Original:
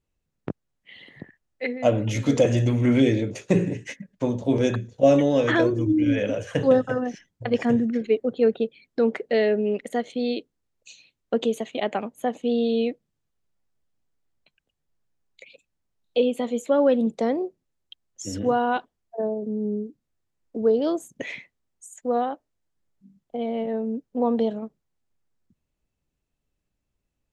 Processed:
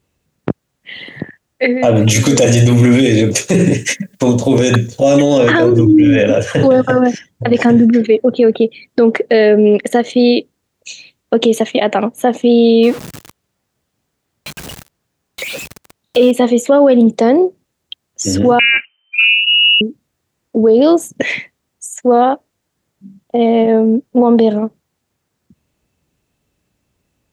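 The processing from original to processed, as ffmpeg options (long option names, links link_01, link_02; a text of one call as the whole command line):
ffmpeg -i in.wav -filter_complex "[0:a]asettb=1/sr,asplit=3[link_01][link_02][link_03];[link_01]atrim=end=1.964[link_04];[link_02]atrim=start=1.96:end=5.38,asetpts=PTS-STARTPTS,afade=type=in:duration=0.004:curve=qsin,afade=type=out:start_time=3.416:duration=0.004:curve=qsin,aemphasis=mode=production:type=75kf[link_05];[link_03]atrim=start=5.376[link_06];[link_04][link_05]acrossfade=duration=0.004:curve1=hsin:curve2=qsin[link_07];[link_07][link_06]acrossfade=duration=0.004:curve1=qsin:curve2=hsin,asettb=1/sr,asplit=3[link_08][link_09][link_10];[link_08]atrim=end=12.834[link_11];[link_09]atrim=start=12.83:end=16.31,asetpts=PTS-STARTPTS,afade=type=in:duration=0.004:curve=qsin,afade=type=out:start_time=3.476:duration=0.004:curve=qsin,aeval=exprs='val(0)+0.5*0.0133*sgn(val(0))':channel_layout=same[link_12];[link_10]atrim=start=16.306[link_13];[link_11][link_12]acrossfade=duration=0.004:curve1=hsin:curve2=qsin[link_14];[link_14][link_13]acrossfade=duration=0.004:curve1=qsin:curve2=hsin,asettb=1/sr,asplit=3[link_15][link_16][link_17];[link_15]atrim=end=18.594[link_18];[link_16]atrim=start=18.59:end=19.81,asetpts=PTS-STARTPTS,afade=type=in:duration=0.004:curve=qsin,afade=type=out:start_time=1.216:duration=0.004:curve=qsin,lowpass=frequency=2600:width_type=q:width=0.5098,lowpass=frequency=2600:width_type=q:width=0.6013,lowpass=frequency=2600:width_type=q:width=0.9,lowpass=frequency=2600:width_type=q:width=2.563,afreqshift=-3100[link_19];[link_17]atrim=start=19.806[link_20];[link_18][link_19]acrossfade=duration=0.004:curve1=hsin:curve2=qsin[link_21];[link_21][link_20]acrossfade=duration=0.004:curve1=qsin:curve2=hsin,highpass=74,alimiter=level_in=17.5dB:limit=-1dB:release=50:level=0:latency=1,volume=-1dB" out.wav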